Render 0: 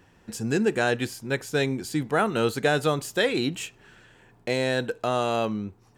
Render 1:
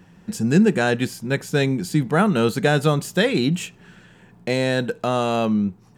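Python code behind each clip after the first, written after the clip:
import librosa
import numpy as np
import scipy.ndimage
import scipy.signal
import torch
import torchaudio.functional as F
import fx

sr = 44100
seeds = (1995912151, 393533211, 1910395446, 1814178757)

y = fx.peak_eq(x, sr, hz=180.0, db=14.5, octaves=0.52)
y = y * librosa.db_to_amplitude(3.0)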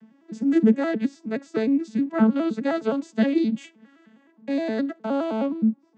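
y = fx.vocoder_arp(x, sr, chord='major triad', root=57, every_ms=104)
y = y * librosa.db_to_amplitude(-2.0)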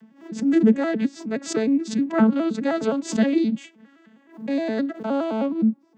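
y = fx.pre_swell(x, sr, db_per_s=140.0)
y = y * librosa.db_to_amplitude(1.0)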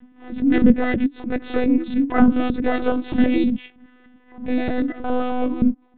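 y = fx.lpc_monotone(x, sr, seeds[0], pitch_hz=250.0, order=16)
y = y * librosa.db_to_amplitude(3.0)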